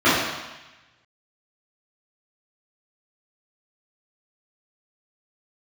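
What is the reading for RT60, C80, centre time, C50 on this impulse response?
1.1 s, 2.5 dB, 81 ms, -0.5 dB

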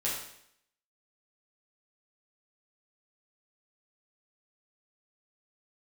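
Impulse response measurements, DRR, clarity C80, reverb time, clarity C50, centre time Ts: -7.0 dB, 6.0 dB, 0.70 s, 2.5 dB, 50 ms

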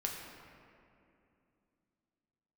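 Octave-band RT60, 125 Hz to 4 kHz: 3.3, 3.6, 2.9, 2.5, 2.3, 1.4 s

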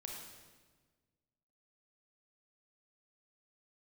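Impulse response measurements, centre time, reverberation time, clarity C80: 66 ms, 1.4 s, 3.5 dB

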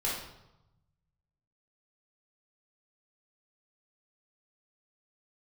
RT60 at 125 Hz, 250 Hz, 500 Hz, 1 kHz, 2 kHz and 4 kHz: 1.8, 1.2, 0.90, 0.95, 0.70, 0.70 s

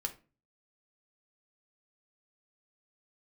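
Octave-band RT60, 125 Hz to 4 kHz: 0.60, 0.50, 0.40, 0.30, 0.30, 0.25 s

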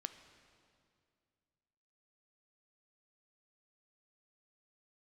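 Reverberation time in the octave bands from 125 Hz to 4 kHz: 2.8, 2.6, 2.4, 2.2, 2.0, 1.9 s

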